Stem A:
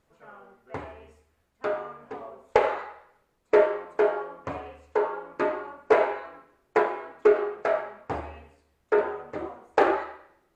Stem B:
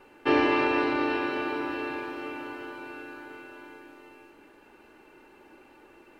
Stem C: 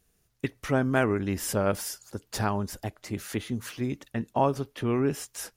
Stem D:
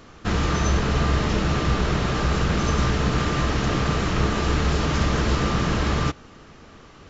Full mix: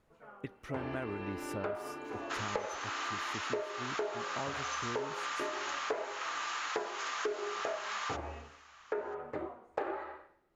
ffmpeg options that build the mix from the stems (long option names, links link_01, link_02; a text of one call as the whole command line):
ffmpeg -i stem1.wav -i stem2.wav -i stem3.wav -i stem4.wav -filter_complex "[0:a]tremolo=f=1.2:d=0.47,volume=-1dB[link_01];[1:a]adelay=500,volume=-4.5dB[link_02];[2:a]volume=-11.5dB,asplit=2[link_03][link_04];[3:a]highpass=frequency=920:width=0.5412,highpass=frequency=920:width=1.3066,equalizer=frequency=6700:width_type=o:width=0.23:gain=8.5,adelay=2050,volume=-4.5dB[link_05];[link_04]apad=whole_len=295075[link_06];[link_02][link_06]sidechaincompress=threshold=-45dB:ratio=5:attack=32:release=1350[link_07];[link_01][link_07][link_03][link_05]amix=inputs=4:normalize=0,highshelf=frequency=5500:gain=-10,acompressor=threshold=-33dB:ratio=8" out.wav